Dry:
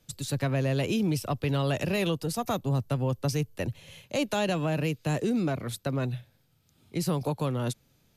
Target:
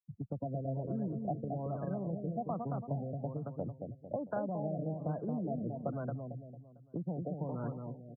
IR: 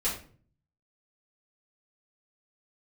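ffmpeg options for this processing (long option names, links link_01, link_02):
-filter_complex "[0:a]adynamicequalizer=threshold=0.00708:dfrequency=700:dqfactor=1.8:tfrequency=700:tqfactor=1.8:attack=5:release=100:ratio=0.375:range=2.5:mode=cutabove:tftype=bell,afftfilt=real='re*gte(hypot(re,im),0.0224)':imag='im*gte(hypot(re,im),0.0224)':win_size=1024:overlap=0.75,acompressor=threshold=-35dB:ratio=20,highpass=110,equalizer=frequency=190:width_type=q:width=4:gain=4,equalizer=frequency=380:width_type=q:width=4:gain=-4,equalizer=frequency=690:width_type=q:width=4:gain=8,lowpass=frequency=2500:width=0.5412,lowpass=frequency=2500:width=1.3066,asplit=2[link_01][link_02];[link_02]adelay=225,lowpass=frequency=1500:poles=1,volume=-4dB,asplit=2[link_03][link_04];[link_04]adelay=225,lowpass=frequency=1500:poles=1,volume=0.44,asplit=2[link_05][link_06];[link_06]adelay=225,lowpass=frequency=1500:poles=1,volume=0.44,asplit=2[link_07][link_08];[link_08]adelay=225,lowpass=frequency=1500:poles=1,volume=0.44,asplit=2[link_09][link_10];[link_10]adelay=225,lowpass=frequency=1500:poles=1,volume=0.44,asplit=2[link_11][link_12];[link_12]adelay=225,lowpass=frequency=1500:poles=1,volume=0.44[link_13];[link_03][link_05][link_07][link_09][link_11][link_13]amix=inputs=6:normalize=0[link_14];[link_01][link_14]amix=inputs=2:normalize=0,afftfilt=real='re*lt(b*sr/1024,740*pow(1700/740,0.5+0.5*sin(2*PI*1.2*pts/sr)))':imag='im*lt(b*sr/1024,740*pow(1700/740,0.5+0.5*sin(2*PI*1.2*pts/sr)))':win_size=1024:overlap=0.75"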